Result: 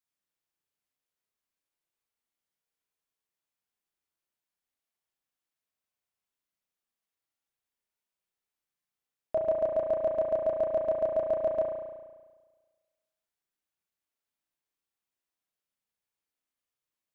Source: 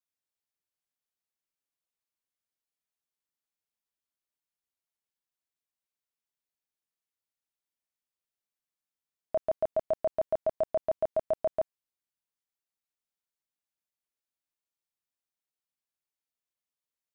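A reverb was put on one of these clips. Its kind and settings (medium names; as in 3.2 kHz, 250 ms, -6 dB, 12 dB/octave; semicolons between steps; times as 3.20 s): spring tank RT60 1.4 s, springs 34 ms, chirp 75 ms, DRR 0 dB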